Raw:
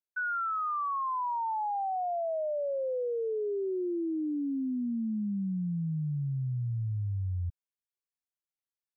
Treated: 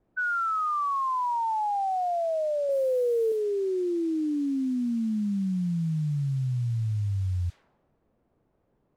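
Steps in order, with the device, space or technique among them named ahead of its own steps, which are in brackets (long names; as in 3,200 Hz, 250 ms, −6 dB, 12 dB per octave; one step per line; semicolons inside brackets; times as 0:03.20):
0:02.69–0:03.32: spectral tilt −2.5 dB per octave
cassette deck with a dynamic noise filter (white noise bed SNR 27 dB; low-pass that shuts in the quiet parts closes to 390 Hz, open at −27.5 dBFS)
level +4.5 dB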